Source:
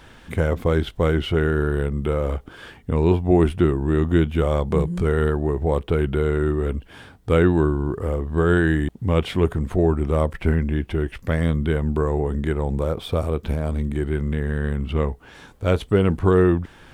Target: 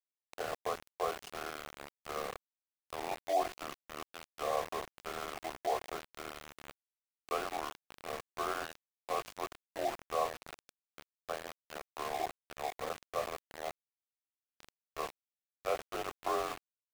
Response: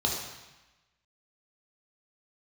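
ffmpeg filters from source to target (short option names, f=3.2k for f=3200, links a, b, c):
-filter_complex "[0:a]highpass=f=480:t=q:w=0.5412,highpass=f=480:t=q:w=1.307,lowpass=f=3.4k:t=q:w=0.5176,lowpass=f=3.4k:t=q:w=0.7071,lowpass=f=3.4k:t=q:w=1.932,afreqshift=-52,asplit=3[a][b][c];[a]bandpass=f=730:t=q:w=8,volume=0dB[d];[b]bandpass=f=1.09k:t=q:w=8,volume=-6dB[e];[c]bandpass=f=2.44k:t=q:w=8,volume=-9dB[f];[d][e][f]amix=inputs=3:normalize=0,asplit=2[g][h];[1:a]atrim=start_sample=2205,adelay=22[i];[h][i]afir=irnorm=-1:irlink=0,volume=-16.5dB[j];[g][j]amix=inputs=2:normalize=0,aeval=exprs='val(0)*gte(abs(val(0)),0.0133)':c=same,volume=1.5dB"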